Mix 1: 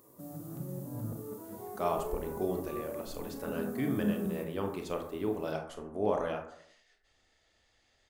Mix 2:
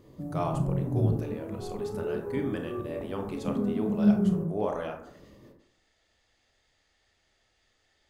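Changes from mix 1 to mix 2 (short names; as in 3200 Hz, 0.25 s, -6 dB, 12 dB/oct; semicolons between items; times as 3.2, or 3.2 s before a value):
speech: entry -1.45 s; background: add tilt -4.5 dB/oct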